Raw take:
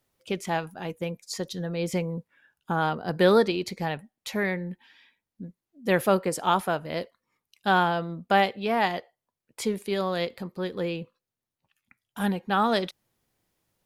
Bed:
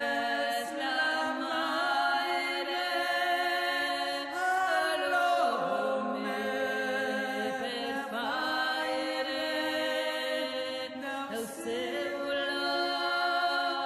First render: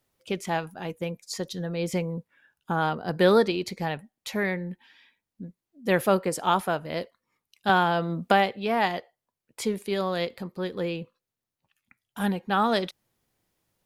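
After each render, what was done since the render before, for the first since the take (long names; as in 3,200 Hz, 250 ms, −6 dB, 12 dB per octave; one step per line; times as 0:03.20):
0:07.69–0:08.53: multiband upward and downward compressor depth 70%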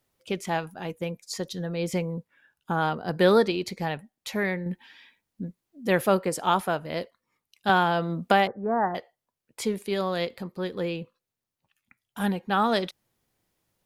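0:04.66–0:05.87: clip gain +5 dB
0:08.47–0:08.95: Butterworth low-pass 1,700 Hz 72 dB per octave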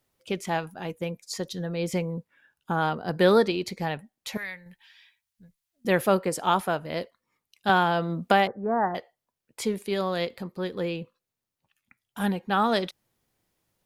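0:04.37–0:05.85: guitar amp tone stack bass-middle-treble 10-0-10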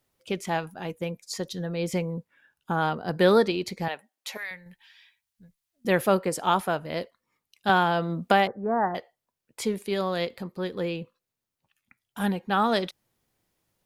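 0:03.88–0:04.51: high-pass filter 500 Hz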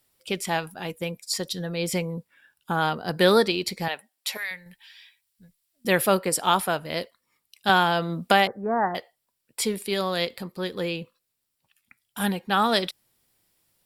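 parametric band 13,000 Hz +10.5 dB 3 octaves
notch filter 6,400 Hz, Q 6.3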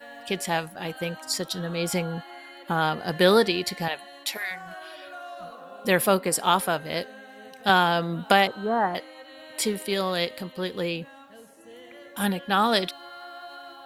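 mix in bed −13 dB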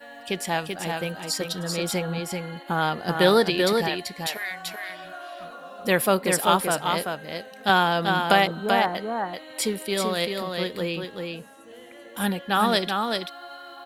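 single-tap delay 386 ms −4.5 dB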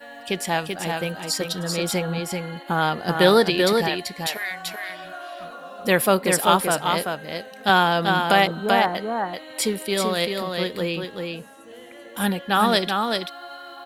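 level +2.5 dB
brickwall limiter −2 dBFS, peak gain reduction 3 dB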